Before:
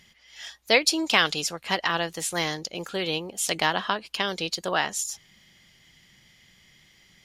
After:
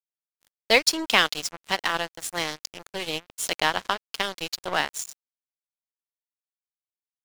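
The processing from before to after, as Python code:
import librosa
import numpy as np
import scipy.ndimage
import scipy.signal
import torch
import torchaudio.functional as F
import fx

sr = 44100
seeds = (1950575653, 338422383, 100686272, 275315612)

y = np.sign(x) * np.maximum(np.abs(x) - 10.0 ** (-30.5 / 20.0), 0.0)
y = y * librosa.db_to_amplitude(2.5)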